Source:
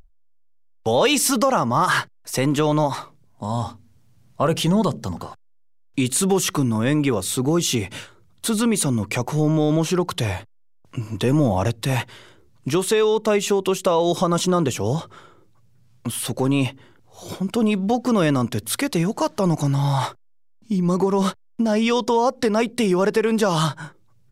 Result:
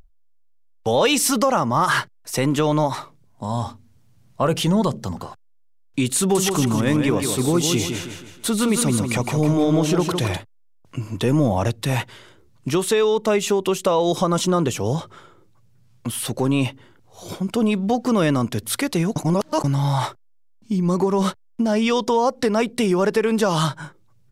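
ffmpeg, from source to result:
-filter_complex "[0:a]asettb=1/sr,asplit=3[a][b][c];[a]atrim=end=6.194[d];[b]atrim=start=6.19:end=10.37,asetpts=PTS-STARTPTS,afade=t=in:d=0.004:c=qsin,afade=t=out:st=4.176:d=0.004:c=qsin,aecho=1:1:159|318|477|636|795:0.501|0.21|0.0884|0.0371|0.0156,atrim=end_sample=184338[e];[c]atrim=start=10.366[f];[d][e]acrossfade=d=0.004:c1=hsin:c2=qsin[g];[g][f]acrossfade=d=0.004:c1=qsin:c2=hsin,asplit=3[h][i][j];[h]atrim=end=19.162[k];[i]atrim=start=19.158:end=19.642,asetpts=PTS-STARTPTS,areverse[l];[j]atrim=start=19.638[m];[k][l]acrossfade=d=0.004:c1=hsin:c2=hsin[n];[n][m]acrossfade=d=0.004:c1=hsin:c2=hsin"

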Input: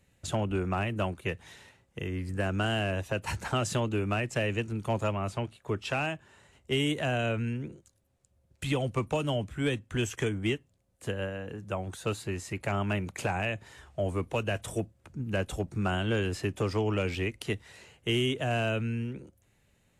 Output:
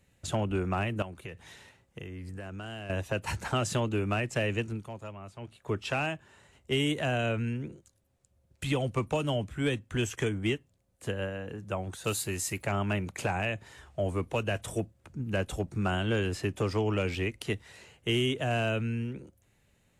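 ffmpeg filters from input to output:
-filter_complex "[0:a]asettb=1/sr,asplit=3[a][b][c];[a]atrim=end=1.024[d];[b]atrim=start=1.02:end=2.9,asetpts=PTS-STARTPTS,afade=t=in:d=0.004:c=qsin,afade=t=out:st=1.876:d=0.004:c=qsin,acompressor=threshold=-37dB:ratio=6:attack=3.2:release=140:knee=1:detection=peak[e];[c]atrim=start=2.896[f];[d][e]acrossfade=d=0.004:c1=hsin:c2=qsin[g];[g][f]acrossfade=d=0.004:c1=qsin:c2=hsin,asettb=1/sr,asplit=3[h][i][j];[h]atrim=end=12.044[k];[i]atrim=start=12.04:end=12.63,asetpts=PTS-STARTPTS,afade=t=in:d=0.004:c=qsin,afade=t=out:st=0.586:d=0.004:c=qsin,aemphasis=mode=production:type=75fm[l];[j]atrim=start=12.626[m];[k][l]acrossfade=d=0.004:c1=hsin:c2=qsin[n];[n][m]acrossfade=d=0.004:c1=qsin:c2=hsin,asplit=3[o][p][q];[o]atrim=end=4.9,asetpts=PTS-STARTPTS,afade=t=out:st=4.69:d=0.21:silence=0.237137[r];[p]atrim=start=4.9:end=5.39,asetpts=PTS-STARTPTS,volume=-12.5dB[s];[q]atrim=start=5.39,asetpts=PTS-STARTPTS,afade=t=in:d=0.21:silence=0.237137[t];[r][s][t]concat=n=3:v=0:a=1"

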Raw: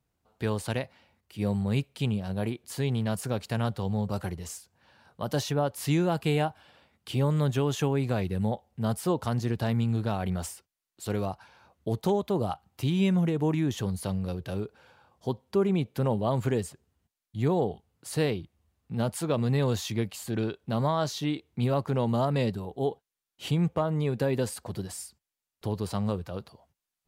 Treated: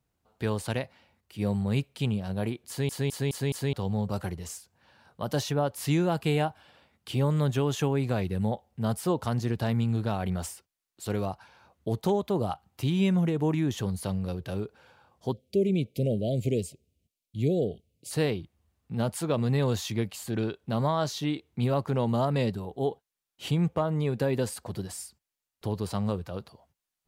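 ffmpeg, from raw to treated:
-filter_complex "[0:a]asettb=1/sr,asplit=3[a][b][c];[a]atrim=end=15.324[d];[b]atrim=start=15.32:end=18.11,asetpts=PTS-STARTPTS,afade=t=in:d=0.004:c=qsin,afade=t=out:st=2.786:d=0.004:c=qsin,asuperstop=centerf=1200:order=12:qfactor=0.77[e];[c]atrim=start=18.106[f];[d][e]acrossfade=d=0.004:c1=hsin:c2=qsin[g];[g][f]acrossfade=d=0.004:c1=qsin:c2=hsin,asplit=6[h][i][j][k][l][m];[h]atrim=end=2.892[n];[i]atrim=start=2.678:end=2.892[o];[j]atrim=start=2.678:end=2.892[p];[k]atrim=start=2.678:end=2.892[q];[l]atrim=start=2.678:end=2.892[r];[m]atrim=start=3.728[s];[n][o]acrossfade=d=0.004:c1=hsin:c2=hsin[t];[t][p]acrossfade=d=0.004:c1=hsin:c2=hsin[u];[u][q]acrossfade=d=0.004:c1=hsin:c2=hsin[v];[v][r]acrossfade=d=0.004:c1=hsin:c2=hsin[w];[w][s]acrossfade=d=0.004:c1=hsin:c2=hsin"

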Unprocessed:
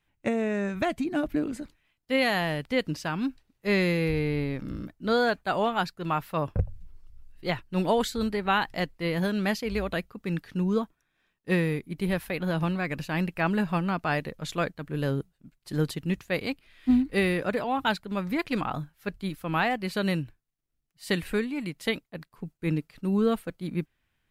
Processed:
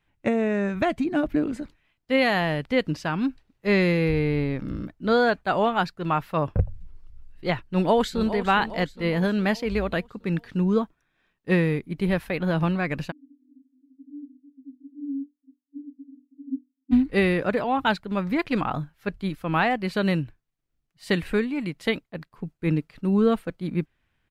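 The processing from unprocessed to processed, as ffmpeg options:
-filter_complex "[0:a]asplit=2[a][b];[b]afade=t=in:st=7.65:d=0.01,afade=t=out:st=8.33:d=0.01,aecho=0:1:410|820|1230|1640|2050|2460:0.237137|0.130426|0.0717341|0.0394537|0.0216996|0.0119348[c];[a][c]amix=inputs=2:normalize=0,asplit=3[d][e][f];[d]afade=t=out:st=13.1:d=0.02[g];[e]asuperpass=centerf=270:order=12:qfactor=6.4,afade=t=in:st=13.1:d=0.02,afade=t=out:st=16.91:d=0.02[h];[f]afade=t=in:st=16.91:d=0.02[i];[g][h][i]amix=inputs=3:normalize=0,lowpass=f=3.4k:p=1,volume=4dB"

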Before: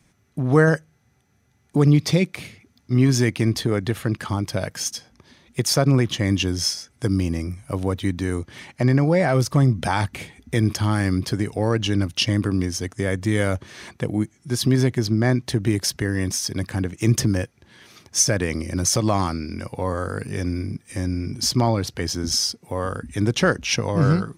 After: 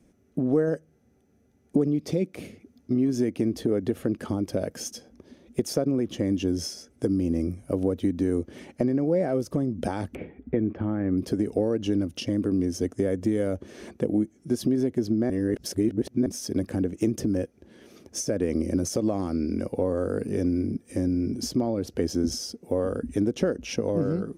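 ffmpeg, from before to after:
-filter_complex "[0:a]asettb=1/sr,asplit=3[a][b][c];[a]atrim=end=10.154[d];[b]atrim=start=10.15:end=11.18,asetpts=PTS-STARTPTS,afade=t=in:d=0.004:c=qsin,afade=t=out:st=1.026:d=0.004:c=qsin,lowpass=f=2.3k:w=0.5412,lowpass=f=2.3k:w=1.3066[e];[c]atrim=start=11.176[f];[d][e]acrossfade=d=0.004:c1=hsin:c2=qsin[g];[g][f]acrossfade=d=0.004:c1=qsin:c2=hsin,asplit=3[h][i][j];[h]atrim=end=15.302[k];[i]atrim=start=15.298:end=16.262,asetpts=PTS-STARTPTS,areverse[l];[j]atrim=start=16.258[m];[k][l]acrossfade=d=0.004:c1=hsin:c2=hsin[n];[n][m]acrossfade=d=0.004:c1=hsin:c2=hsin,highshelf=f=12k:g=-10.5,acompressor=threshold=-23dB:ratio=6,equalizer=f=125:t=o:w=1:g=-10,equalizer=f=250:t=o:w=1:g=6,equalizer=f=500:t=o:w=1:g=6,equalizer=f=1k:t=o:w=1:g=-10,equalizer=f=2k:t=o:w=1:g=-8,equalizer=f=4k:t=o:w=1:g=-10,equalizer=f=8k:t=o:w=1:g=-5,volume=1.5dB"

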